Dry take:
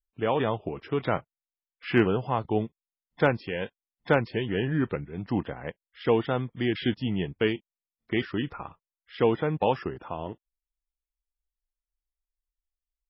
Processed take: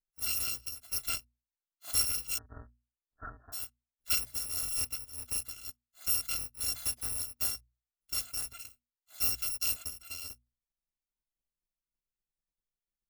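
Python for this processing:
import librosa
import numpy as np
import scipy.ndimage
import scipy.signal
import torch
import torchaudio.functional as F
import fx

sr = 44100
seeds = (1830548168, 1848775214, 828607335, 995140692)

y = fx.bit_reversed(x, sr, seeds[0], block=256)
y = fx.brickwall_lowpass(y, sr, high_hz=1900.0, at=(2.37, 3.52), fade=0.02)
y = fx.hum_notches(y, sr, base_hz=60, count=4)
y = F.gain(torch.from_numpy(y), -7.5).numpy()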